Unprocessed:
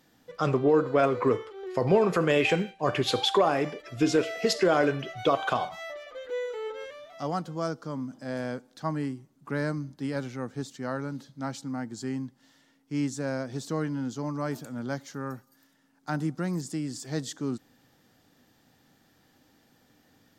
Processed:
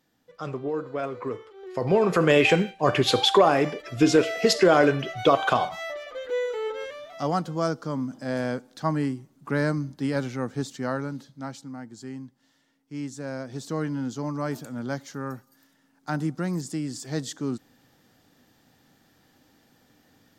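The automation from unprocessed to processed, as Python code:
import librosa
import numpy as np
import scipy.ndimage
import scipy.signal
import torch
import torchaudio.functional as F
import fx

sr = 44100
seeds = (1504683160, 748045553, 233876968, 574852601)

y = fx.gain(x, sr, db=fx.line((1.32, -7.5), (2.28, 5.0), (10.81, 5.0), (11.76, -5.0), (13.0, -5.0), (13.9, 2.0)))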